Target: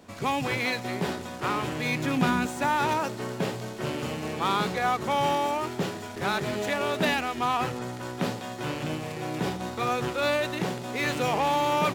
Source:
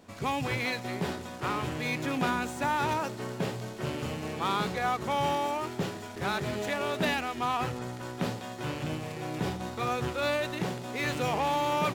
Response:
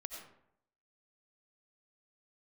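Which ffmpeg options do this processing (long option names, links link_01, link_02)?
-filter_complex "[0:a]asettb=1/sr,asplit=3[link_01][link_02][link_03];[link_01]atrim=end=1.724[link_04];[link_02]atrim=start=1.72:end=2.46,asetpts=PTS-STARTPTS,afade=type=in:duration=0.004:curve=qsin,afade=type=out:start_time=0.736:duration=0.004:curve=qsin,asubboost=boost=11.5:cutoff=250[link_05];[link_03]atrim=start=2.456[link_06];[link_04][link_05]acrossfade=duration=0.004:curve1=hsin:curve2=qsin[link_07];[link_07][link_06]acrossfade=duration=0.004:curve1=qsin:curve2=hsin,acrossover=split=130[link_08][link_09];[link_08]acompressor=threshold=-49dB:ratio=6[link_10];[link_10][link_09]amix=inputs=2:normalize=0,volume=3.5dB"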